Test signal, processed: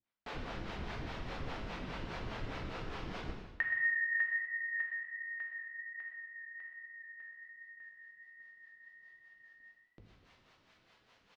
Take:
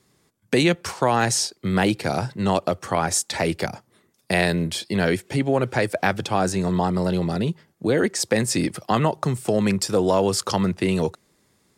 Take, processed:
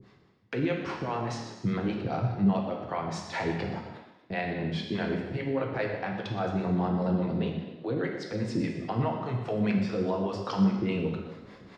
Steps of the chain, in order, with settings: treble shelf 8.9 kHz -11 dB; hum notches 50/100 Hz; in parallel at +1 dB: compression, threshold -31 dBFS; on the sum: transient shaper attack -4 dB, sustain +4 dB; reverse; upward compressor, threshold -28 dBFS; reverse; transient shaper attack +5 dB, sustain -6 dB; peak limiter -12.5 dBFS; flange 1.3 Hz, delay 5.7 ms, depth 2.2 ms, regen -85%; harmonic tremolo 4.9 Hz, depth 100%, crossover 420 Hz; distance through air 230 m; frequency-shifting echo 122 ms, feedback 50%, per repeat +35 Hz, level -14.5 dB; gated-style reverb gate 370 ms falling, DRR 1 dB

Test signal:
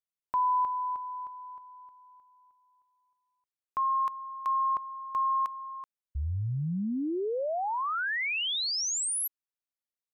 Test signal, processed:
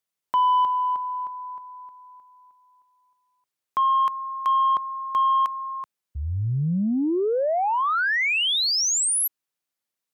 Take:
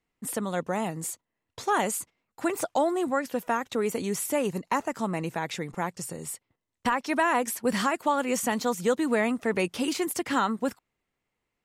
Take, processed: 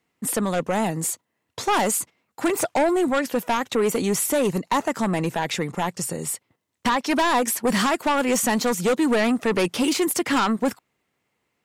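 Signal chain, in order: high-pass 98 Hz; in parallel at -7 dB: sine folder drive 10 dB, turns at -12.5 dBFS; on the sum: trim -1.5 dB

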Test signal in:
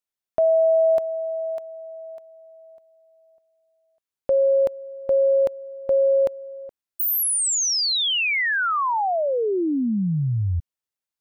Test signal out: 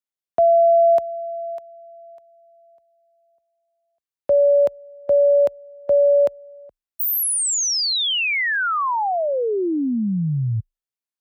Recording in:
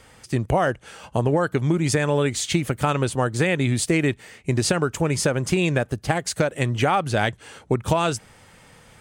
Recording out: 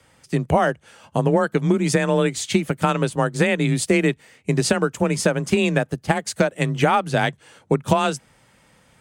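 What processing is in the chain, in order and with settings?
frequency shift +26 Hz; upward expansion 1.5:1, over -35 dBFS; trim +3.5 dB

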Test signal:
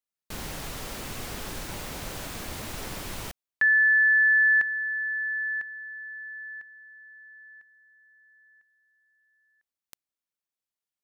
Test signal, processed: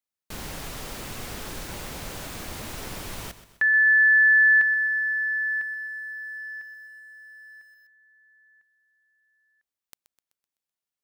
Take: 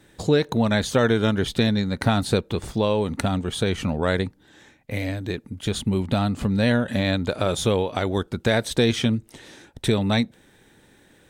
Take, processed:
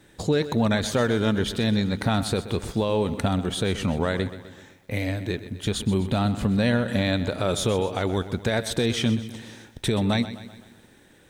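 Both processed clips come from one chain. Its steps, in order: peak limiter -13.5 dBFS; bit-crushed delay 127 ms, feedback 55%, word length 9-bit, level -13.5 dB

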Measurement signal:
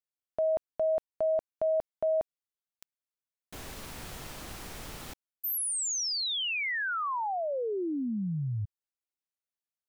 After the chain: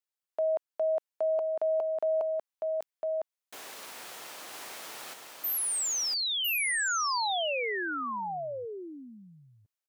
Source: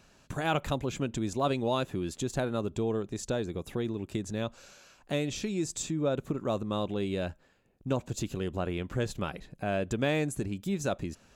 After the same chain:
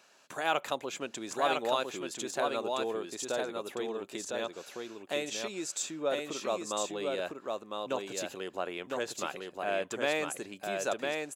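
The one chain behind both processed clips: high-pass 500 Hz 12 dB/octave; on a send: delay 1005 ms -3.5 dB; on the sum: trim +1 dB

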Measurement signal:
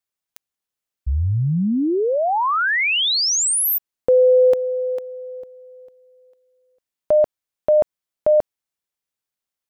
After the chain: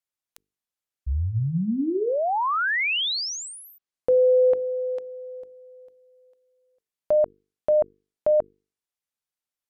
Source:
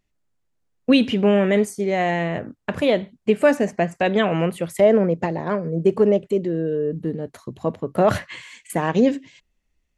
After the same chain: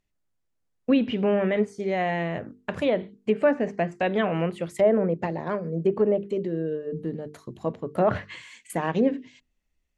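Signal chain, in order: hum notches 50/100/150/200/250/300/350/400/450 Hz; low-pass that closes with the level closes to 1.9 kHz, closed at -13 dBFS; trim -4.5 dB

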